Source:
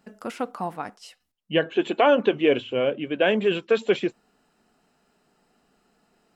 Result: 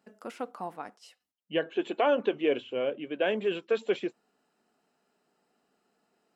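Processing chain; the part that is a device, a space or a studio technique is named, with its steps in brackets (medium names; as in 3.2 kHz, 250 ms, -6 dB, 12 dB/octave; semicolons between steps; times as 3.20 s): filter by subtraction (in parallel: low-pass 380 Hz 12 dB/octave + polarity flip); on the sum: trim -8.5 dB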